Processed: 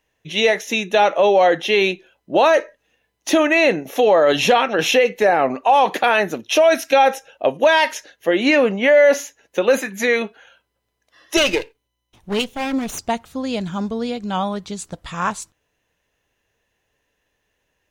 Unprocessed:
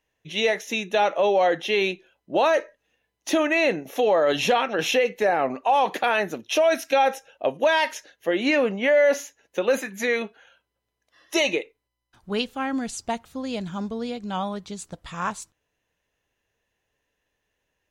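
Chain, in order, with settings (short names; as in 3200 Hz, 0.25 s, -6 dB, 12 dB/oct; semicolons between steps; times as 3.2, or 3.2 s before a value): 11.37–12.99 minimum comb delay 0.32 ms; gain +6 dB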